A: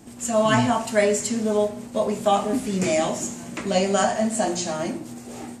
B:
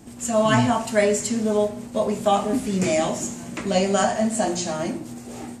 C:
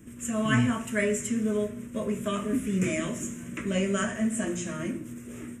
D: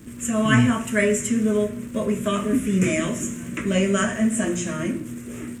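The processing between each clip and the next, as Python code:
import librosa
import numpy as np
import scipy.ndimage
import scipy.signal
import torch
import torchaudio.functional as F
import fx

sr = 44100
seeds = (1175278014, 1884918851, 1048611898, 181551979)

y1 = fx.low_shelf(x, sr, hz=140.0, db=4.5)
y2 = fx.fixed_phaser(y1, sr, hz=1900.0, stages=4)
y2 = y2 * 10.0 ** (-2.5 / 20.0)
y3 = fx.dmg_crackle(y2, sr, seeds[0], per_s=320.0, level_db=-48.0)
y3 = y3 * 10.0 ** (6.5 / 20.0)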